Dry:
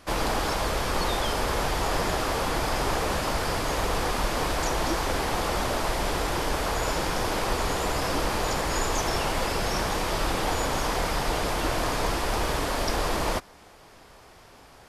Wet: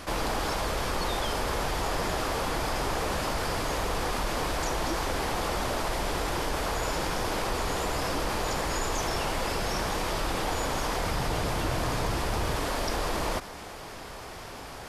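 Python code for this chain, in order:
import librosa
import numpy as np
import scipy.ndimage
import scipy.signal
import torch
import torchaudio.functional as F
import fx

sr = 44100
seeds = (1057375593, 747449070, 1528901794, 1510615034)

y = fx.peak_eq(x, sr, hz=110.0, db=8.5, octaves=1.5, at=(11.06, 12.55))
y = fx.env_flatten(y, sr, amount_pct=50)
y = F.gain(torch.from_numpy(y), -5.0).numpy()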